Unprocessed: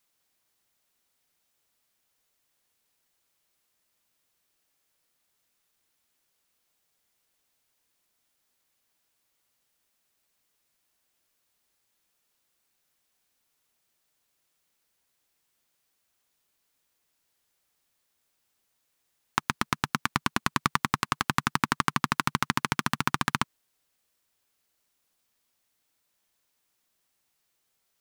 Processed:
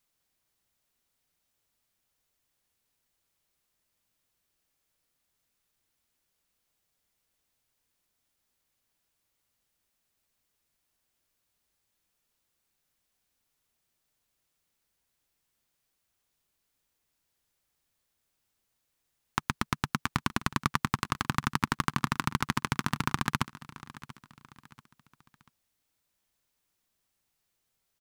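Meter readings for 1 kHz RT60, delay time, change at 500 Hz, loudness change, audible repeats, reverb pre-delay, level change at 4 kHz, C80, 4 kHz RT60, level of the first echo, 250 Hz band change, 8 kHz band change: no reverb, 687 ms, -2.5 dB, -3.0 dB, 3, no reverb, -4.0 dB, no reverb, no reverb, -17.5 dB, -0.5 dB, -4.0 dB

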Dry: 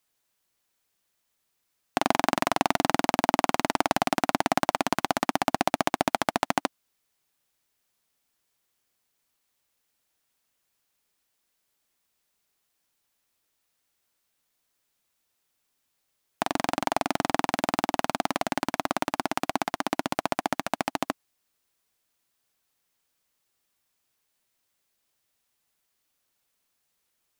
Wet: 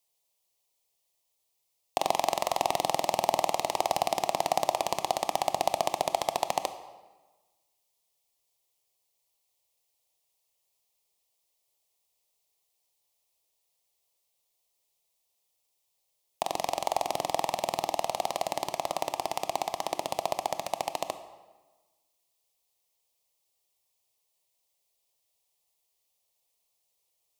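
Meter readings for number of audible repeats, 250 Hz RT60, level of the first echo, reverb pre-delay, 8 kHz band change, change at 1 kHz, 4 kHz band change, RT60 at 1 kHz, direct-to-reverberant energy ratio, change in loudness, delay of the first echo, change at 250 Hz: no echo, 1.3 s, no echo, 21 ms, 0.0 dB, -2.0 dB, -2.0 dB, 1.3 s, 10.0 dB, -3.0 dB, no echo, -14.0 dB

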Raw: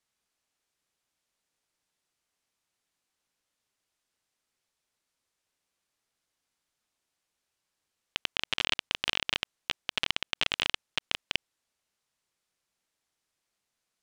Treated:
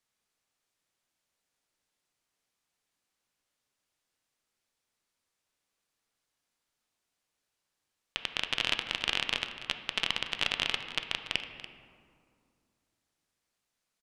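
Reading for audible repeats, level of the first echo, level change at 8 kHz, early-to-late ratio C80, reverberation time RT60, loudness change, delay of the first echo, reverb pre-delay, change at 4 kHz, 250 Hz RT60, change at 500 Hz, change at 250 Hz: 1, -15.0 dB, -1.0 dB, 8.5 dB, 2.3 s, -0.5 dB, 287 ms, 4 ms, -0.5 dB, 2.8 s, 0.0 dB, +0.5 dB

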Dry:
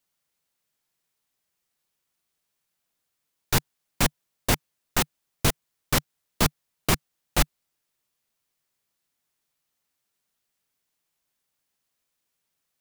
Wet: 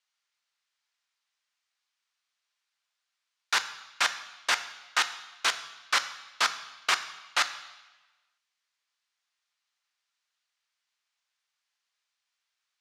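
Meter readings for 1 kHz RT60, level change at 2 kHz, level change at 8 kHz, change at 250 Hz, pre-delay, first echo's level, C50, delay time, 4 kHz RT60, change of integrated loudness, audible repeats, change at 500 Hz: 1.1 s, +3.5 dB, -4.5 dB, -25.0 dB, 3 ms, no echo, 13.0 dB, no echo, 1.1 s, -1.5 dB, no echo, -12.0 dB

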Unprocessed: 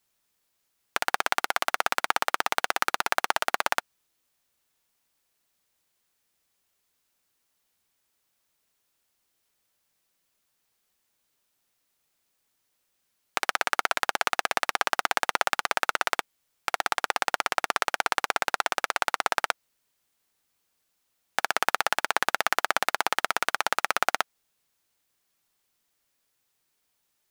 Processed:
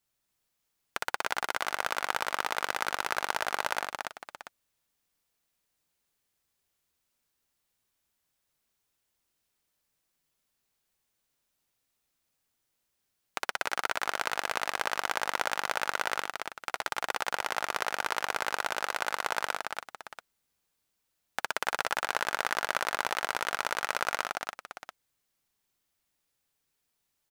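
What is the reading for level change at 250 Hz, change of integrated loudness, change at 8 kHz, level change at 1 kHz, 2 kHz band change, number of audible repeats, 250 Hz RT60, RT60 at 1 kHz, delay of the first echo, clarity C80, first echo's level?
-4.5 dB, -5.0 dB, -4.5 dB, -5.0 dB, -4.0 dB, 3, no reverb, no reverb, 62 ms, no reverb, -5.5 dB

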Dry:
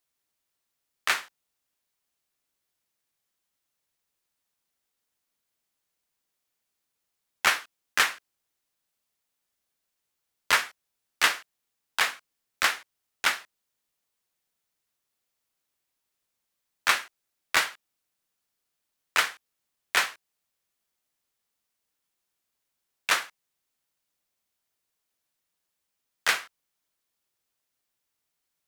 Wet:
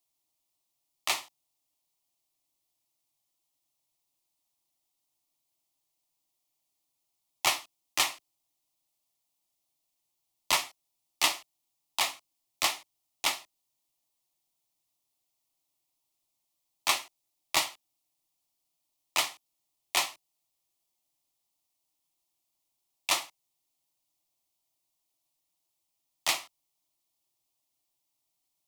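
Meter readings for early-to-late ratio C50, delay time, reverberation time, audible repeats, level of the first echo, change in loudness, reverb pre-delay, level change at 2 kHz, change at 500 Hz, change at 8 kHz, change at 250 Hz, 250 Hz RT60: no reverb, no echo, no reverb, no echo, no echo, -3.5 dB, no reverb, -8.5 dB, -1.5 dB, +1.0 dB, -0.5 dB, no reverb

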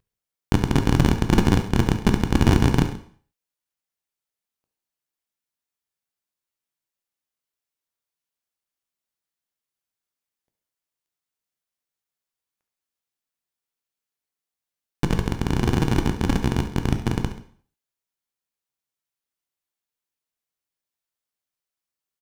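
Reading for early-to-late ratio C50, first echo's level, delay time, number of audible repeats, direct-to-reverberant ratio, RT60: 9.0 dB, -13.0 dB, 70 ms, 2, 5.5 dB, 0.50 s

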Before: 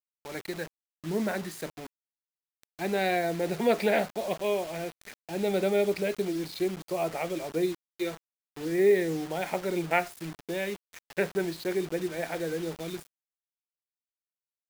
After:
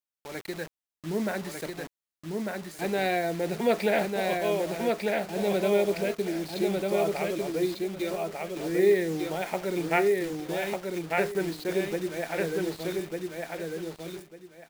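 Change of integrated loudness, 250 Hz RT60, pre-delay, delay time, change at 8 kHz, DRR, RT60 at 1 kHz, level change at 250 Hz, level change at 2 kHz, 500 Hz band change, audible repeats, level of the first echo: +1.0 dB, no reverb, no reverb, 1198 ms, +2.0 dB, no reverb, no reverb, +2.0 dB, +2.0 dB, +2.0 dB, 3, -3.0 dB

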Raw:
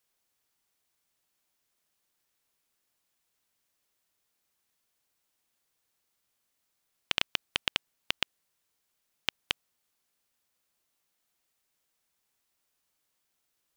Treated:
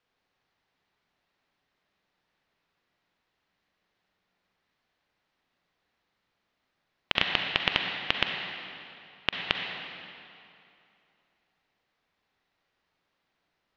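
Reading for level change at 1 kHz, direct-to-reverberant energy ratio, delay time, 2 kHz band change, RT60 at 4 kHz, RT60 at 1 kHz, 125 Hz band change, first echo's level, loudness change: +8.0 dB, 1.5 dB, no echo, +7.0 dB, 2.1 s, 2.7 s, +9.0 dB, no echo, +4.0 dB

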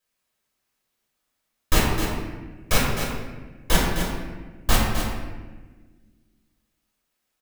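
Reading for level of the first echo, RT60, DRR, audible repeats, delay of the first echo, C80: -7.5 dB, 1.3 s, -6.0 dB, 1, 259 ms, 1.5 dB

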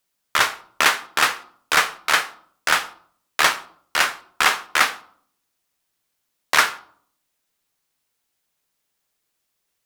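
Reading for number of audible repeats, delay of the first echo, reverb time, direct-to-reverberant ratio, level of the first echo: no echo, no echo, 0.60 s, 11.0 dB, no echo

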